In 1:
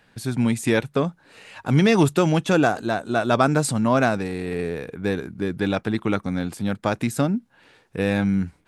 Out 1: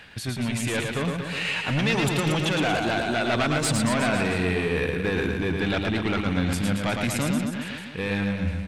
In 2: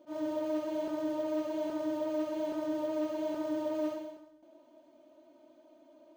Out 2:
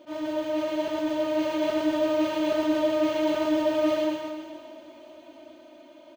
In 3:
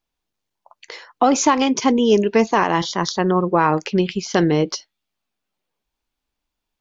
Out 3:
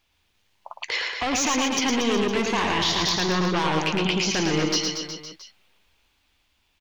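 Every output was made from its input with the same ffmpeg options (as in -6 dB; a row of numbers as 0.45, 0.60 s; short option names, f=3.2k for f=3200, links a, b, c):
-filter_complex "[0:a]asoftclip=type=tanh:threshold=-19dB,areverse,acompressor=threshold=-36dB:ratio=6,areverse,equalizer=f=2.7k:t=o:w=1.7:g=10,dynaudnorm=f=190:g=13:m=4dB,asplit=2[a][b];[b]alimiter=level_in=2dB:limit=-24dB:level=0:latency=1,volume=-2dB,volume=2dB[c];[a][c]amix=inputs=2:normalize=0,equalizer=f=78:t=o:w=0.36:g=14,aecho=1:1:110|231|364.1|510.5|671.6:0.631|0.398|0.251|0.158|0.1"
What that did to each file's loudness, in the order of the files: -2.5, +8.5, -5.0 LU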